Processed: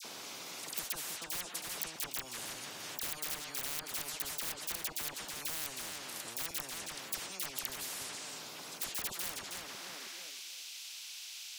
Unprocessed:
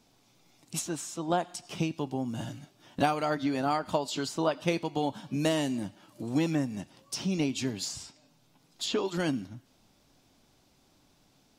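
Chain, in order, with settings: compression 2:1, threshold -46 dBFS, peak gain reduction 14 dB; high-pass sweep 400 Hz -> 3.2 kHz, 9.09–10.32 s; integer overflow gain 30.5 dB; phase dispersion lows, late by 48 ms, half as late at 1.7 kHz; tape echo 318 ms, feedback 22%, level -13.5 dB, low-pass 4.9 kHz; spectrum-flattening compressor 10:1; trim +8 dB

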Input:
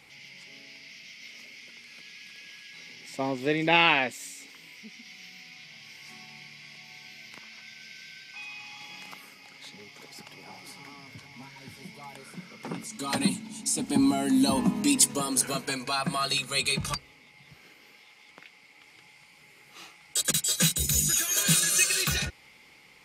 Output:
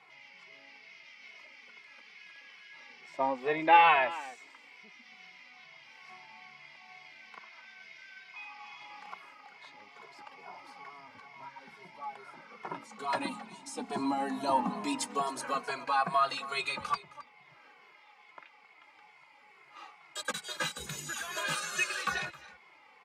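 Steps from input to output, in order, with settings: band-pass filter 1 kHz, Q 1.6; on a send: delay 266 ms -17 dB; on the sum: endless flanger 2.3 ms -2.3 Hz; trim +8 dB

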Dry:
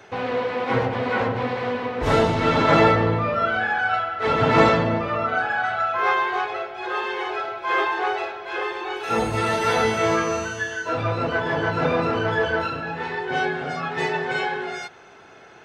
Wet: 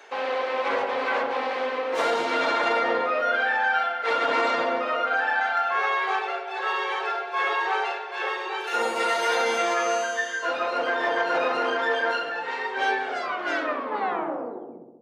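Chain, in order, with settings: tape stop on the ending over 2.07 s; Bessel high-pass 480 Hz, order 4; peak limiter -15 dBFS, peak gain reduction 9 dB; filtered feedback delay 68 ms, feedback 76%, low-pass 1.4 kHz, level -8 dB; speed mistake 24 fps film run at 25 fps

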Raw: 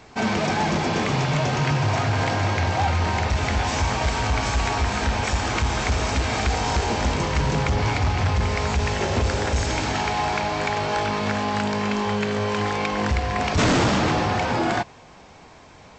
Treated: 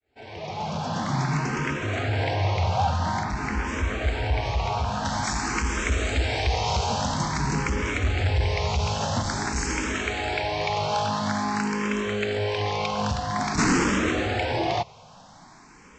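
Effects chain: fade-in on the opening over 1.25 s; treble shelf 4.2 kHz -3.5 dB, from 3.23 s -10.5 dB, from 5.05 s +3.5 dB; barber-pole phaser +0.49 Hz

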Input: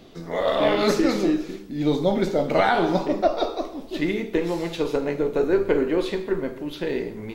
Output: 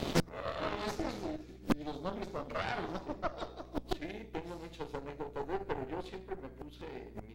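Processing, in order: inverted gate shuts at -26 dBFS, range -28 dB; Chebyshev shaper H 8 -11 dB, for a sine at -26 dBFS; hum 60 Hz, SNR 16 dB; trim +8.5 dB

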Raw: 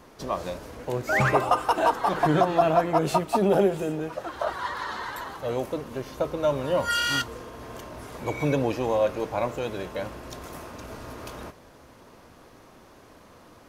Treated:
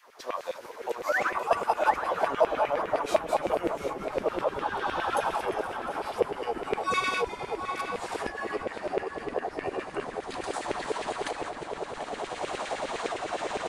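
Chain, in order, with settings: pitch bend over the whole clip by -8 st starting unshifted; recorder AGC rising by 14 dB/s; on a send: tape echo 740 ms, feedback 59%, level -3 dB, low-pass 1.3 kHz; on the sum: LFO high-pass saw down 9.8 Hz 390–2500 Hz; frequency-shifting echo 353 ms, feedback 61%, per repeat -140 Hz, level -14.5 dB; trim -6 dB

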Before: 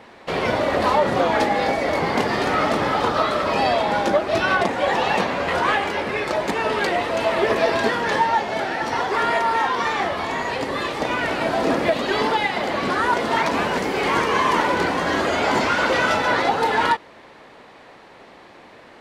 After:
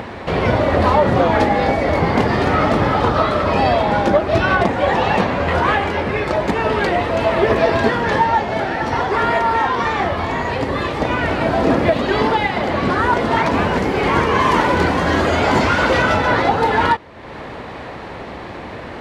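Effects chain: peaking EQ 73 Hz +13 dB 2.1 oct; upward compressor, threshold -23 dBFS; treble shelf 4.3 kHz -9 dB, from 14.40 s -3.5 dB, from 16.02 s -8.5 dB; trim +3.5 dB

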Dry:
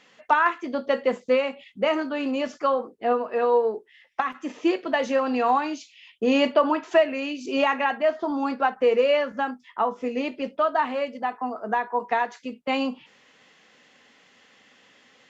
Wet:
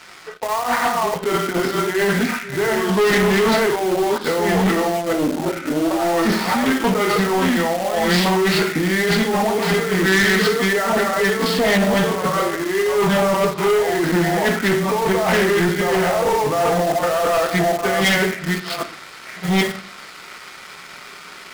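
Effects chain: chunks repeated in reverse 557 ms, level -2.5 dB; bass shelf 420 Hz -11.5 dB; compressor with a negative ratio -32 dBFS, ratio -1; on a send at -2 dB: reverberation RT60 0.40 s, pre-delay 3 ms; on the sum: tape speed -29%; waveshaping leveller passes 3; in parallel at -9 dB: bit crusher 4-bit; on the sum: treble shelf 4.9 kHz +9 dB; loudspeaker Doppler distortion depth 0.11 ms

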